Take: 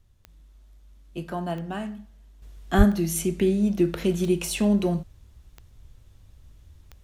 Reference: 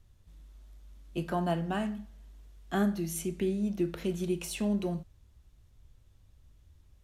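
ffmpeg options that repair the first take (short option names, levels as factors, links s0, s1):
-filter_complex "[0:a]adeclick=t=4,asplit=3[s0][s1][s2];[s0]afade=t=out:st=2.77:d=0.02[s3];[s1]highpass=f=140:w=0.5412,highpass=f=140:w=1.3066,afade=t=in:st=2.77:d=0.02,afade=t=out:st=2.89:d=0.02[s4];[s2]afade=t=in:st=2.89:d=0.02[s5];[s3][s4][s5]amix=inputs=3:normalize=0,asetnsamples=n=441:p=0,asendcmd='2.42 volume volume -8.5dB',volume=1"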